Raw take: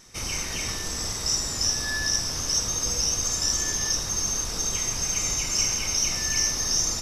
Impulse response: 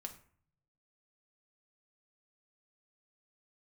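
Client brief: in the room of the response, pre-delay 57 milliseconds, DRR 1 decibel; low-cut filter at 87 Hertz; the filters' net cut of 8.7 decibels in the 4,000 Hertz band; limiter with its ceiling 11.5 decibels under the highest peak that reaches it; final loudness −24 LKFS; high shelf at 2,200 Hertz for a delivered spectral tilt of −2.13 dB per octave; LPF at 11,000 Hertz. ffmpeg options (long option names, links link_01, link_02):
-filter_complex "[0:a]highpass=87,lowpass=11000,highshelf=frequency=2200:gain=-7,equalizer=frequency=4000:width_type=o:gain=-4.5,alimiter=level_in=6dB:limit=-24dB:level=0:latency=1,volume=-6dB,asplit=2[link_01][link_02];[1:a]atrim=start_sample=2205,adelay=57[link_03];[link_02][link_03]afir=irnorm=-1:irlink=0,volume=2.5dB[link_04];[link_01][link_04]amix=inputs=2:normalize=0,volume=10.5dB"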